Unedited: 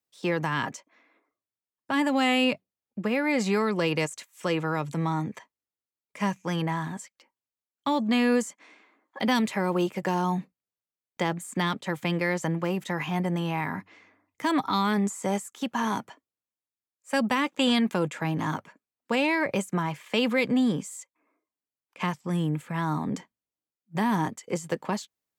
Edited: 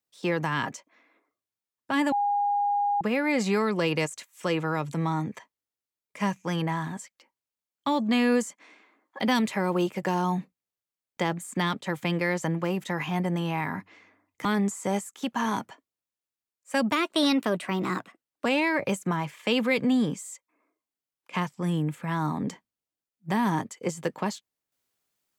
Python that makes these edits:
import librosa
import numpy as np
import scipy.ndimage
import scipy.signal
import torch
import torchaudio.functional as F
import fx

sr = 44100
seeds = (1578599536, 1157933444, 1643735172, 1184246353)

y = fx.edit(x, sr, fx.bleep(start_s=2.12, length_s=0.89, hz=815.0, db=-22.0),
    fx.cut(start_s=14.45, length_s=0.39),
    fx.speed_span(start_s=17.31, length_s=1.81, speed=1.18), tone=tone)